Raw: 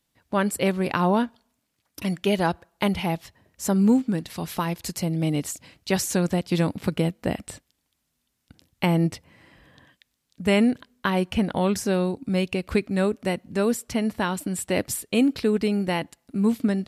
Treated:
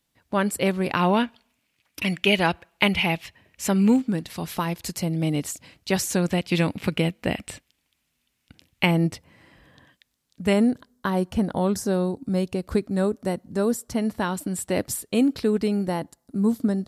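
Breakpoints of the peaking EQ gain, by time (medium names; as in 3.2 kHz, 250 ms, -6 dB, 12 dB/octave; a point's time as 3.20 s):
peaking EQ 2.5 kHz 0.92 oct
+1 dB
from 0.97 s +12.5 dB
from 3.96 s +1 dB
from 6.29 s +8.5 dB
from 8.91 s -1 dB
from 10.53 s -12 dB
from 13.97 s -5 dB
from 15.88 s -14.5 dB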